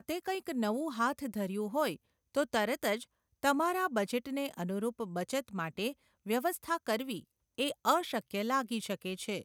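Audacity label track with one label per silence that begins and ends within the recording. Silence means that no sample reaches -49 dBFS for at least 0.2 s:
1.960000	2.350000	silence
3.040000	3.430000	silence
5.930000	6.260000	silence
7.200000	7.580000	silence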